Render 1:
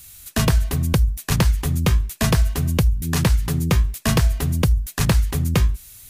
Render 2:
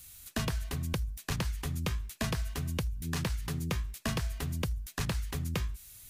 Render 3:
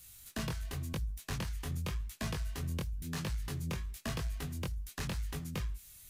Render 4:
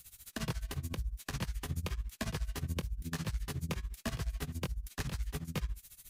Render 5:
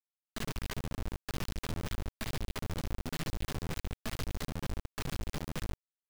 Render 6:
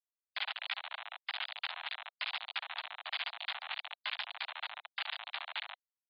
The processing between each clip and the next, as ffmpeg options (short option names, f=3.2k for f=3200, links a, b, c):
-filter_complex "[0:a]acrossover=split=970|6500[a][b][c];[a]acompressor=threshold=-24dB:ratio=4[d];[b]acompressor=threshold=-28dB:ratio=4[e];[c]acompressor=threshold=-39dB:ratio=4[f];[d][e][f]amix=inputs=3:normalize=0,volume=-8dB"
-af "flanger=delay=19:depth=4.8:speed=0.92,asoftclip=type=tanh:threshold=-28.5dB"
-af "tremolo=f=14:d=0.88,volume=3.5dB"
-af "aresample=11025,asoftclip=type=tanh:threshold=-37dB,aresample=44100,acrusher=bits=4:dc=4:mix=0:aa=0.000001,volume=6dB"
-af "highpass=f=340:t=q:w=0.5412,highpass=f=340:t=q:w=1.307,lowpass=f=3.3k:t=q:w=0.5176,lowpass=f=3.3k:t=q:w=0.7071,lowpass=f=3.3k:t=q:w=1.932,afreqshift=380,afftfilt=real='re*gte(hypot(re,im),0.00112)':imag='im*gte(hypot(re,im),0.00112)':win_size=1024:overlap=0.75,aderivative,volume=16.5dB"